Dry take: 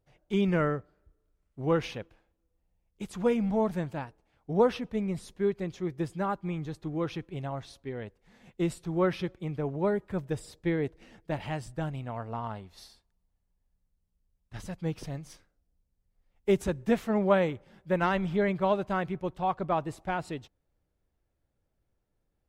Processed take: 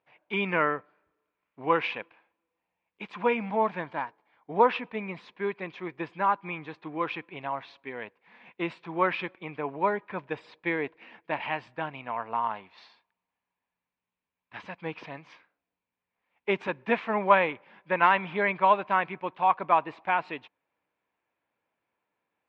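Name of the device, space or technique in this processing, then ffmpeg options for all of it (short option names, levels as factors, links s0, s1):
phone earpiece: -filter_complex "[0:a]highpass=340,equalizer=f=380:t=q:w=4:g=-5,equalizer=f=560:t=q:w=4:g=-3,equalizer=f=1000:t=q:w=4:g=10,equalizer=f=1700:t=q:w=4:g=4,equalizer=f=2400:t=q:w=4:g=10,lowpass=f=3600:w=0.5412,lowpass=f=3600:w=1.3066,asettb=1/sr,asplit=3[s0][s1][s2];[s0]atrim=end=3.794[s3];[s1]atrim=start=3.79:end=4.52,asetpts=PTS-STARTPTS,afade=t=in:d=0.004:c=qsin,afade=t=out:st=0.726:d=0.004:c=qsin,bandreject=f=2600:w=5.2[s4];[s2]atrim=start=4.516[s5];[s3][s4]acrossfade=d=0.004:c1=hsin:c2=qsin[s6];[s6][s5]acrossfade=d=0.004:c1=qsin:c2=hsin,volume=1.41"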